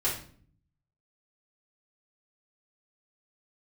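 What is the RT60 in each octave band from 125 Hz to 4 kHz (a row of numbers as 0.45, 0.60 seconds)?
1.0, 0.85, 0.55, 0.45, 0.40, 0.40 seconds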